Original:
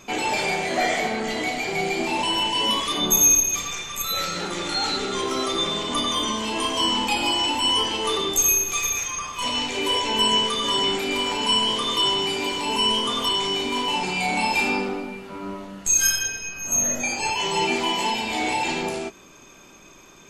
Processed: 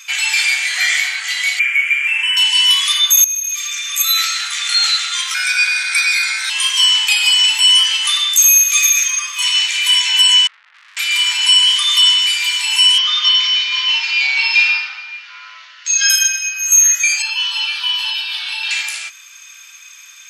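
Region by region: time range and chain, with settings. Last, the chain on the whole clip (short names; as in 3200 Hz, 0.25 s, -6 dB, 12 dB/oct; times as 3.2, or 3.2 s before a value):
1.59–2.37 resonant high shelf 3500 Hz -8.5 dB, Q 3 + fixed phaser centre 1700 Hz, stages 4
3.24–3.92 HPF 750 Hz 24 dB/oct + compressor 10:1, threshold -30 dBFS
5.34–6.5 ring modulator 1100 Hz + ripple EQ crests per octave 1.6, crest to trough 11 dB
10.47–10.97 steep low-pass 500 Hz + tube stage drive 40 dB, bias 0.65 + Doppler distortion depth 0.42 ms
12.98–16.1 steep low-pass 5800 Hz 48 dB/oct + frequency shift +37 Hz
17.22–18.71 high shelf 9800 Hz -11 dB + fixed phaser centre 2100 Hz, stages 6
whole clip: inverse Chebyshev high-pass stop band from 370 Hz, stop band 70 dB; bell 10000 Hz +2.5 dB 0.63 oct; maximiser +13 dB; gain -1 dB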